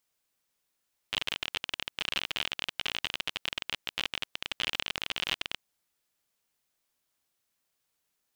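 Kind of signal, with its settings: random clicks 39/s -14 dBFS 4.53 s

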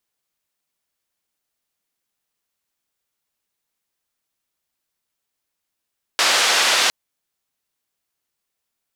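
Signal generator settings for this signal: noise band 540–5000 Hz, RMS -17 dBFS 0.71 s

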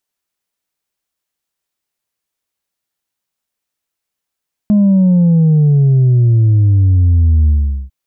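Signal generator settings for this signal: sub drop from 210 Hz, over 3.20 s, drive 2 dB, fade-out 0.42 s, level -7 dB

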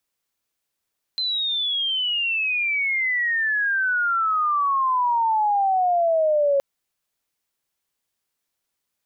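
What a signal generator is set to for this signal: chirp logarithmic 4100 Hz -> 550 Hz -21.5 dBFS -> -16 dBFS 5.42 s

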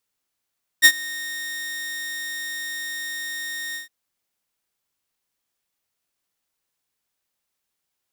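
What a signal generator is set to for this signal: ADSR saw 1850 Hz, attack 33 ms, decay 62 ms, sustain -22 dB, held 2.93 s, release 0.132 s -4 dBFS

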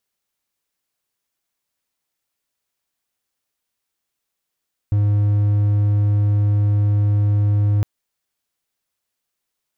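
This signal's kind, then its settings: tone triangle 103 Hz -11.5 dBFS 2.91 s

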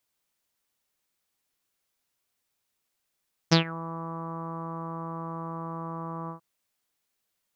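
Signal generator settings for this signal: synth note saw E3 24 dB/oct, low-pass 1100 Hz, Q 6.9, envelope 2.5 oct, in 0.22 s, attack 17 ms, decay 0.11 s, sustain -20.5 dB, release 0.11 s, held 2.78 s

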